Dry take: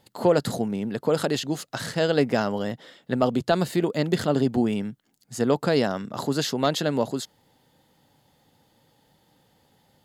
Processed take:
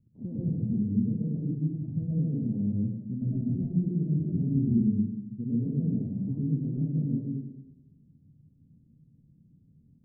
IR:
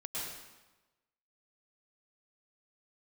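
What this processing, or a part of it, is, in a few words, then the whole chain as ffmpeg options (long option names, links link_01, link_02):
club heard from the street: -filter_complex "[0:a]alimiter=limit=-17.5dB:level=0:latency=1:release=285,lowpass=frequency=220:width=0.5412,lowpass=frequency=220:width=1.3066[link_01];[1:a]atrim=start_sample=2205[link_02];[link_01][link_02]afir=irnorm=-1:irlink=0,volume=6dB"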